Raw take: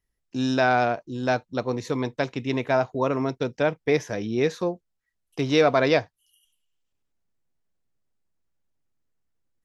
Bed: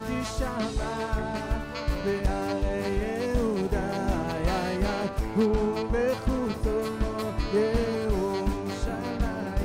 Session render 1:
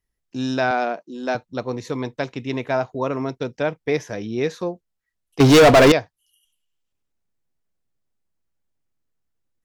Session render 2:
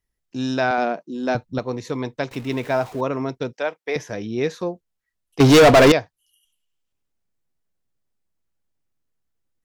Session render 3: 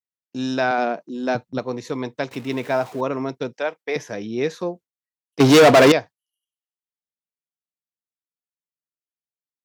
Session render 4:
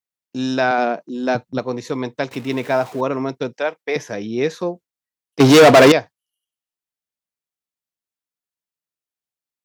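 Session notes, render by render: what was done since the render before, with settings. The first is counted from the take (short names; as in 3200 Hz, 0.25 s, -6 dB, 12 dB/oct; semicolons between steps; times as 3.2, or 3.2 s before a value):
0.71–1.35 elliptic high-pass 170 Hz; 5.4–5.92 sample leveller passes 5
0.78–1.59 low shelf 200 Hz +11.5 dB; 2.31–3.01 zero-crossing step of -36.5 dBFS; 3.53–3.96 HPF 490 Hz
gate with hold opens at -32 dBFS; HPF 140 Hz 12 dB/oct
gain +3 dB; limiter -1 dBFS, peak gain reduction 1 dB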